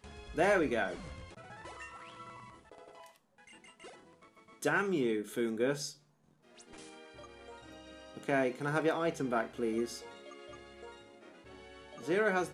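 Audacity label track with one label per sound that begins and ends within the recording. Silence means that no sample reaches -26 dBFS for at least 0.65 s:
4.650000	5.720000	sound
8.290000	9.830000	sound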